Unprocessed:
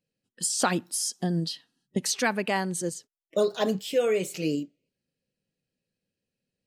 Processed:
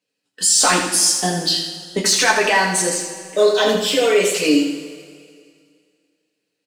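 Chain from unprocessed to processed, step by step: frequency weighting A; in parallel at -0.5 dB: compressor with a negative ratio -31 dBFS; on the sum: waveshaping leveller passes 1; feedback delay 81 ms, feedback 46%, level -7 dB; two-slope reverb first 0.23 s, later 2.2 s, from -19 dB, DRR -3.5 dB

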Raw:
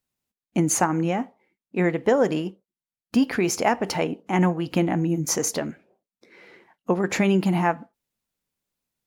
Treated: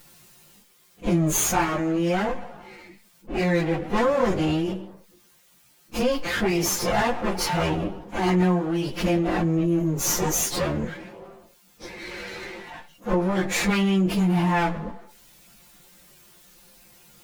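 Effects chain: comb filter that takes the minimum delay 5.7 ms; plain phase-vocoder stretch 1.9×; level flattener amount 50%

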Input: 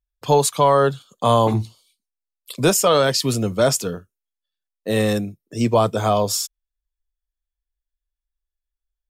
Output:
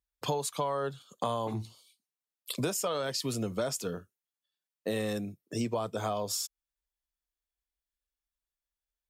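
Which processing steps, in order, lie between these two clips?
high-pass 120 Hz 6 dB/octave; compression 6:1, threshold -29 dBFS, peak gain reduction 16.5 dB; trim -1 dB

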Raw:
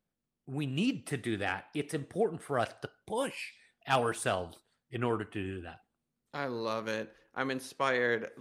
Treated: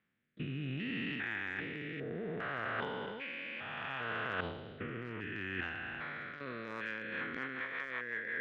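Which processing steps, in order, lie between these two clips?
spectrogram pixelated in time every 400 ms; high-pass 92 Hz 12 dB/octave; harmony voices +5 st -18 dB; resampled via 16 kHz; in parallel at +2 dB: peak limiter -35 dBFS, peak gain reduction 12 dB; on the sum: FFT filter 210 Hz 0 dB, 720 Hz -4 dB, 1.9 kHz +15 dB, 3.6 kHz +2 dB, 6.1 kHz -28 dB; reverse; compression 10:1, threshold -36 dBFS, peak gain reduction 15 dB; reverse; transient shaper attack +3 dB, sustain +8 dB; rotary cabinet horn 0.65 Hz, later 5.5 Hz, at 6.53 s; trim +1.5 dB

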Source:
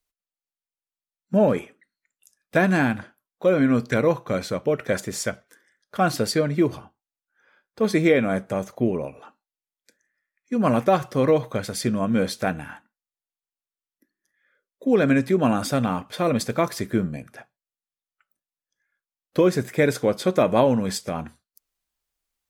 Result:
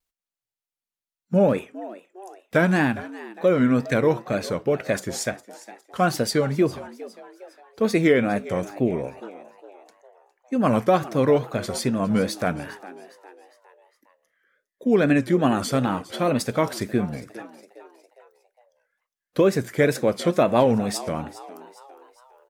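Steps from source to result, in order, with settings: wow and flutter 120 cents; on a send: frequency-shifting echo 408 ms, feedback 46%, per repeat +94 Hz, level -17.5 dB

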